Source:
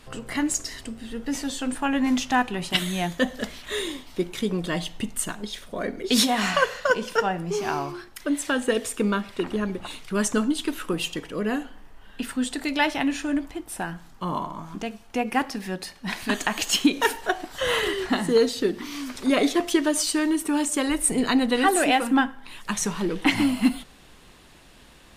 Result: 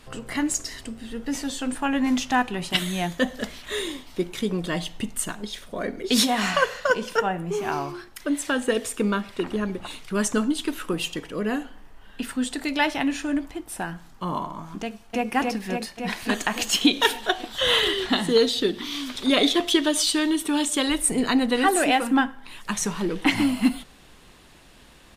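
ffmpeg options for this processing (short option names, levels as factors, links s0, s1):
-filter_complex "[0:a]asettb=1/sr,asplit=3[s0][s1][s2];[s0]atrim=end=7.194[s3];[s1]atrim=start=7.19:end=7.72,asetpts=PTS-STARTPTS,afade=t=in:d=0.004:c=qsin,afade=t=out:st=0.526:d=0.004:c=qsin,equalizer=f=5000:t=o:w=0.55:g=-11[s4];[s2]atrim=start=7.716[s5];[s3][s4]acrossfade=d=0.004:c1=hsin:c2=qsin[s6];[s6][s5]acrossfade=d=0.004:c1=qsin:c2=hsin,asplit=2[s7][s8];[s8]afade=t=in:st=14.85:d=0.01,afade=t=out:st=15.3:d=0.01,aecho=0:1:280|560|840|1120|1400|1680|1960|2240|2520|2800|3080|3360:0.794328|0.595746|0.44681|0.335107|0.25133|0.188498|0.141373|0.10603|0.0795225|0.0596419|0.0447314|0.0335486[s9];[s7][s9]amix=inputs=2:normalize=0,asettb=1/sr,asplit=3[s10][s11][s12];[s10]atrim=end=16.814[s13];[s11]atrim=start=16.81:end=21.01,asetpts=PTS-STARTPTS,afade=t=in:d=0.004:c=qsin,afade=t=out:st=4.196:d=0.004:c=qsin,equalizer=f=3500:w=2.8:g=12.5[s14];[s12]atrim=start=21.006[s15];[s13][s14]acrossfade=d=0.004:c1=hsin:c2=qsin[s16];[s16][s15]acrossfade=d=0.004:c1=qsin:c2=hsin"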